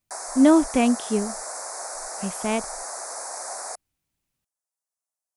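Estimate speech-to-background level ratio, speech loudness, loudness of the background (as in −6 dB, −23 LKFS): 11.0 dB, −21.5 LKFS, −32.5 LKFS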